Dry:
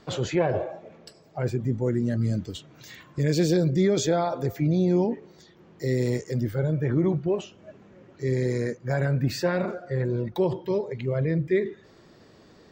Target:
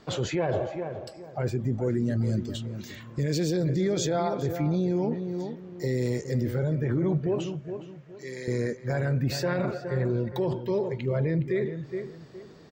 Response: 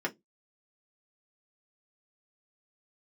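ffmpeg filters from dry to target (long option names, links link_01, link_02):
-filter_complex "[0:a]asettb=1/sr,asplit=3[link_01][link_02][link_03];[link_01]atrim=end=7.574[link_04];[link_02]atrim=start=7.57:end=8.48,asetpts=PTS-STARTPTS,afade=type=in:duration=0.004:curve=qsin,afade=type=out:start_time=0.906:duration=0.004:curve=qsin,highpass=frequency=1400:poles=1[link_05];[link_03]atrim=start=8.476[link_06];[link_04][link_05]acrossfade=duration=0.004:curve1=hsin:curve2=qsin[link_07];[link_07][link_06]acrossfade=duration=0.004:curve1=qsin:curve2=hsin,asplit=2[link_08][link_09];[link_09]adelay=415,lowpass=frequency=1900:poles=1,volume=-10.5dB,asplit=2[link_10][link_11];[link_11]adelay=415,lowpass=frequency=1900:poles=1,volume=0.29,asplit=2[link_12][link_13];[link_13]adelay=415,lowpass=frequency=1900:poles=1,volume=0.29[link_14];[link_08][link_10][link_12][link_14]amix=inputs=4:normalize=0,alimiter=limit=-18.5dB:level=0:latency=1:release=25"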